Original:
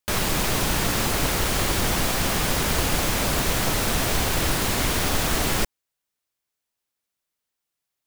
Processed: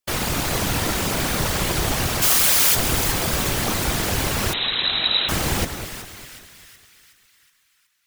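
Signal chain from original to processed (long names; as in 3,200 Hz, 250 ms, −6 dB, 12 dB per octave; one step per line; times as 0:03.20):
0:02.22–0:02.75: spectral tilt +3.5 dB per octave
on a send: echo with a time of its own for lows and highs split 1,500 Hz, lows 201 ms, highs 370 ms, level −9.5 dB
0:04.53–0:05.29: on the sum: voice inversion scrambler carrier 3,900 Hz
random phases in short frames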